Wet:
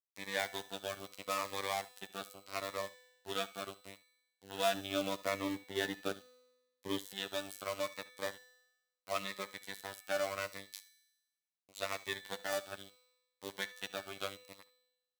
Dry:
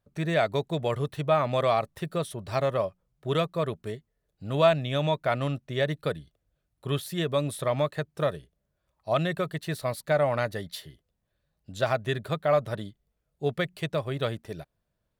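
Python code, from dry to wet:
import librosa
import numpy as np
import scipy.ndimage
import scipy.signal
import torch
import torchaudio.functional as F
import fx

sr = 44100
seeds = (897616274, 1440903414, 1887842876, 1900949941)

y = fx.block_float(x, sr, bits=5)
y = fx.peak_eq(y, sr, hz=270.0, db=11.5, octaves=1.4, at=(4.74, 7.13))
y = fx.robotise(y, sr, hz=97.8)
y = fx.lowpass(y, sr, hz=2100.0, slope=6)
y = np.sign(y) * np.maximum(np.abs(y) - 10.0 ** (-37.5 / 20.0), 0.0)
y = scipy.signal.sosfilt(scipy.signal.butter(2, 46.0, 'highpass', fs=sr, output='sos'), y)
y = fx.tilt_eq(y, sr, slope=4.0)
y = fx.comb_fb(y, sr, f0_hz=250.0, decay_s=1.1, harmonics='all', damping=0.0, mix_pct=70)
y = y + 10.0 ** (-20.0 / 20.0) * np.pad(y, (int(71 * sr / 1000.0), 0))[:len(y)]
y = fx.notch_cascade(y, sr, direction='falling', hz=0.76)
y = y * librosa.db_to_amplitude(6.5)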